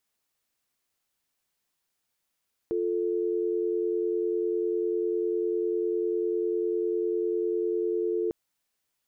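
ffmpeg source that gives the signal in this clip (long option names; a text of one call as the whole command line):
ffmpeg -f lavfi -i "aevalsrc='0.0422*(sin(2*PI*350*t)+sin(2*PI*440*t))':duration=5.6:sample_rate=44100" out.wav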